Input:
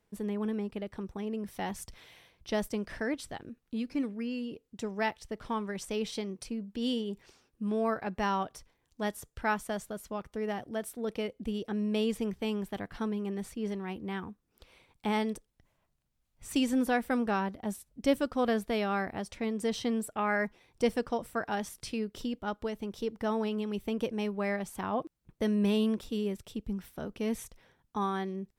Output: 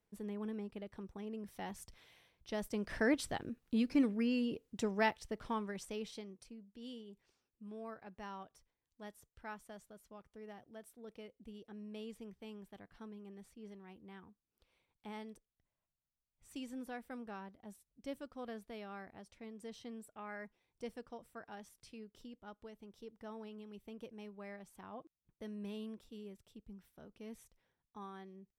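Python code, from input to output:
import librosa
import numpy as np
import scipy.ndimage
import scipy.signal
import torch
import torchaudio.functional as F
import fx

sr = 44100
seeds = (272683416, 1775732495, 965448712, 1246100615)

y = fx.gain(x, sr, db=fx.line((2.57, -9.0), (3.05, 1.5), (4.65, 1.5), (5.64, -5.5), (6.64, -17.5)))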